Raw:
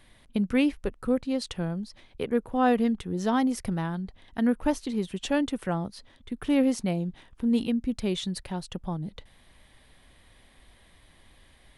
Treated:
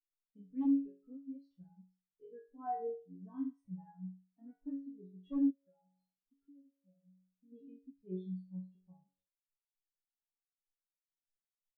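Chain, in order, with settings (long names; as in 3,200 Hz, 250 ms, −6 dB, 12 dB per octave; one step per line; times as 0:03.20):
resonators tuned to a chord F#2 fifth, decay 0.84 s
0:05.50–0:07.52: downward compressor 16 to 1, threshold −51 dBFS, peak gain reduction 22 dB
wave folding −35 dBFS
every bin expanded away from the loudest bin 2.5 to 1
level +12 dB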